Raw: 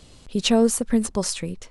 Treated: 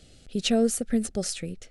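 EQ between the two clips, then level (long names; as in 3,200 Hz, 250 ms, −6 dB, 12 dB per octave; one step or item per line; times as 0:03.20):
Butterworth band-reject 1,000 Hz, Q 2.1
−4.5 dB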